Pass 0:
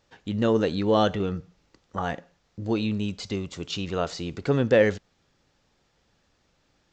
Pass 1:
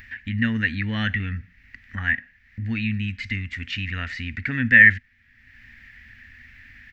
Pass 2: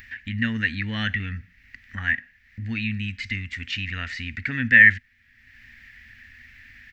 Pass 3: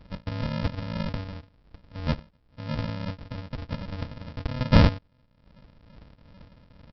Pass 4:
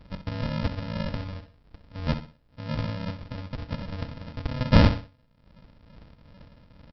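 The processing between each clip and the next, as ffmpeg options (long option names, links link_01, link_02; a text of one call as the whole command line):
ffmpeg -i in.wav -filter_complex "[0:a]firequalizer=gain_entry='entry(100,0);entry(160,-18);entry(240,-2);entry(350,-29);entry(530,-28);entry(1200,-17);entry(1800,14);entry(3400,-11);entry(7000,-22);entry(11000,-5)':delay=0.05:min_phase=1,asplit=2[link_01][link_02];[link_02]acompressor=mode=upward:threshold=-31dB:ratio=2.5,volume=-2dB[link_03];[link_01][link_03]amix=inputs=2:normalize=0,volume=2dB" out.wav
ffmpeg -i in.wav -af "highshelf=frequency=2700:gain=7.5,volume=-3dB" out.wav
ffmpeg -i in.wav -af "afftfilt=real='re*pow(10,9/40*sin(2*PI*(0.62*log(max(b,1)*sr/1024/100)/log(2)-(2.4)*(pts-256)/sr)))':imag='im*pow(10,9/40*sin(2*PI*(0.62*log(max(b,1)*sr/1024/100)/log(2)-(2.4)*(pts-256)/sr)))':win_size=1024:overlap=0.75,aresample=11025,acrusher=samples=29:mix=1:aa=0.000001,aresample=44100,volume=-4dB" out.wav
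ffmpeg -i in.wav -af "aecho=1:1:64|128|192:0.282|0.0846|0.0254" out.wav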